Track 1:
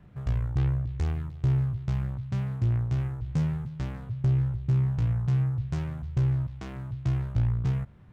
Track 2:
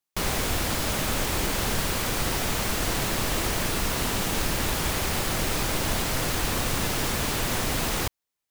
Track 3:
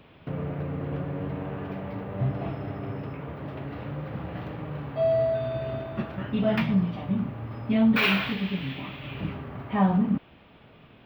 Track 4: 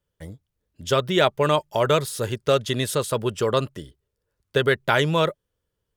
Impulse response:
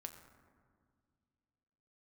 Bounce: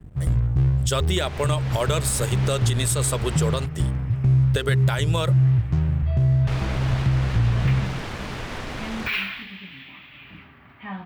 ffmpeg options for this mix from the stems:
-filter_complex "[0:a]aemphasis=mode=reproduction:type=riaa,acrossover=split=130|3000[link_01][link_02][link_03];[link_01]acompressor=threshold=-26dB:ratio=3[link_04];[link_04][link_02][link_03]amix=inputs=3:normalize=0,volume=-1dB,asplit=2[link_05][link_06];[link_06]volume=-5dB[link_07];[1:a]lowpass=2400,adelay=1000,volume=-5dB,asplit=3[link_08][link_09][link_10];[link_08]atrim=end=3.66,asetpts=PTS-STARTPTS,afade=type=out:start_time=3.656:duration=0.004:curve=hsin[link_11];[link_09]atrim=start=3.66:end=6.47,asetpts=PTS-STARTPTS,volume=0[link_12];[link_10]atrim=start=6.47,asetpts=PTS-STARTPTS,afade=type=in:duration=0.004:curve=hsin[link_13];[link_11][link_12][link_13]concat=n=3:v=0:a=1,asplit=2[link_14][link_15];[link_15]volume=-6.5dB[link_16];[2:a]equalizer=frequency=125:width_type=o:width=1:gain=-7,equalizer=frequency=500:width_type=o:width=1:gain=-10,equalizer=frequency=2000:width_type=o:width=1:gain=7,adelay=1100,volume=-9.5dB[link_17];[3:a]equalizer=frequency=8100:width_type=o:width=0.29:gain=11,bandreject=frequency=57.45:width_type=h:width=4,bandreject=frequency=114.9:width_type=h:width=4,bandreject=frequency=172.35:width_type=h:width=4,bandreject=frequency=229.8:width_type=h:width=4,bandreject=frequency=287.25:width_type=h:width=4,bandreject=frequency=344.7:width_type=h:width=4,bandreject=frequency=402.15:width_type=h:width=4,bandreject=frequency=459.6:width_type=h:width=4,volume=2dB[link_18];[link_05][link_14][link_18]amix=inputs=3:normalize=0,aeval=exprs='sgn(val(0))*max(abs(val(0))-0.00668,0)':channel_layout=same,alimiter=limit=-8.5dB:level=0:latency=1:release=294,volume=0dB[link_19];[4:a]atrim=start_sample=2205[link_20];[link_07][link_16]amix=inputs=2:normalize=0[link_21];[link_21][link_20]afir=irnorm=-1:irlink=0[link_22];[link_17][link_19][link_22]amix=inputs=3:normalize=0,highshelf=frequency=2800:gain=7.5,alimiter=limit=-12dB:level=0:latency=1:release=217"

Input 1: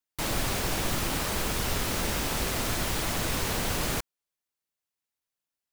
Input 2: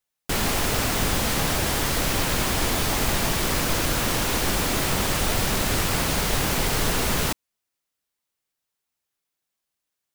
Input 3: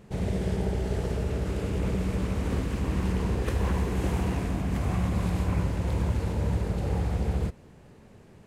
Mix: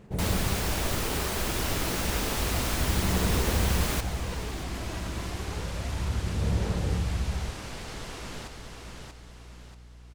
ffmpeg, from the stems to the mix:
ffmpeg -i stem1.wav -i stem2.wav -i stem3.wav -filter_complex "[0:a]volume=-1dB,asplit=2[link_01][link_02];[link_02]volume=-19.5dB[link_03];[1:a]lowpass=7600,aeval=exprs='val(0)+0.02*(sin(2*PI*60*n/s)+sin(2*PI*2*60*n/s)/2+sin(2*PI*3*60*n/s)/3+sin(2*PI*4*60*n/s)/4+sin(2*PI*5*60*n/s)/5)':channel_layout=same,adelay=1150,volume=-16.5dB,asplit=2[link_04][link_05];[link_05]volume=-4.5dB[link_06];[2:a]highshelf=frequency=4600:gain=6.5,aphaser=in_gain=1:out_gain=1:delay=3.1:decay=0.63:speed=0.3:type=sinusoidal,volume=-8.5dB[link_07];[link_03][link_06]amix=inputs=2:normalize=0,aecho=0:1:635|1270|1905|2540|3175|3810:1|0.42|0.176|0.0741|0.0311|0.0131[link_08];[link_01][link_04][link_07][link_08]amix=inputs=4:normalize=0" out.wav

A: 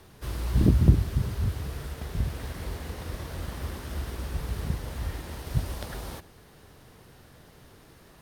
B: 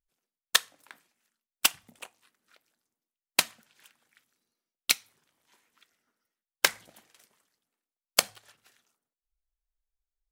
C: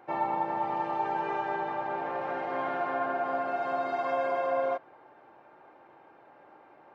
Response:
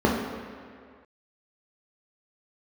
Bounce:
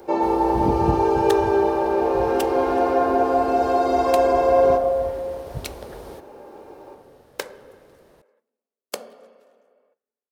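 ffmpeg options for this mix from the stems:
-filter_complex "[0:a]volume=-7dB[link_01];[1:a]highpass=130,adelay=750,volume=-11.5dB,asplit=2[link_02][link_03];[link_03]volume=-24dB[link_04];[2:a]highshelf=frequency=2600:width_type=q:width=3:gain=-7,bandreject=frequency=50:width_type=h:width=6,bandreject=frequency=100:width_type=h:width=6,bandreject=frequency=150:width_type=h:width=6,bandreject=frequency=200:width_type=h:width=6,aexciter=amount=15.9:drive=9.3:freq=3200,volume=-4dB,asplit=2[link_05][link_06];[link_06]volume=-16dB[link_07];[3:a]atrim=start_sample=2205[link_08];[link_04][link_07]amix=inputs=2:normalize=0[link_09];[link_09][link_08]afir=irnorm=-1:irlink=0[link_10];[link_01][link_02][link_05][link_10]amix=inputs=4:normalize=0,equalizer=frequency=490:width=0.95:gain=13"

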